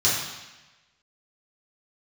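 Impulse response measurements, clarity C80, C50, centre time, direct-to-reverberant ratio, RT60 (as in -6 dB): 4.0 dB, 1.5 dB, 66 ms, -8.5 dB, 1.1 s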